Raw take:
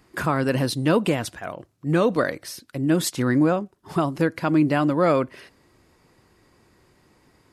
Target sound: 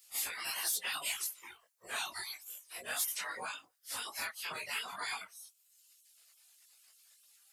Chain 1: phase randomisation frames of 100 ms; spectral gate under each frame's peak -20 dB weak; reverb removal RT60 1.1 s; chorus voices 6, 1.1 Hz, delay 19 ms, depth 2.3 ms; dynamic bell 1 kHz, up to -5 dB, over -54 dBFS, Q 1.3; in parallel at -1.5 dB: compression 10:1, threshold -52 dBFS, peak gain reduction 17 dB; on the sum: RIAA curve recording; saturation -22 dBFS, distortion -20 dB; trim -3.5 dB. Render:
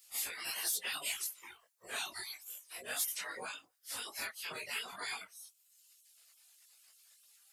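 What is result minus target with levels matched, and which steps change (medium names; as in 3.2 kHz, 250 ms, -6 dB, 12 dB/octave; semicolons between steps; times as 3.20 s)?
compression: peak gain reduction +5 dB; 1 kHz band -3.0 dB
change: dynamic bell 400 Hz, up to -5 dB, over -54 dBFS, Q 1.3; change: compression 10:1, threshold -45.5 dBFS, peak gain reduction 12 dB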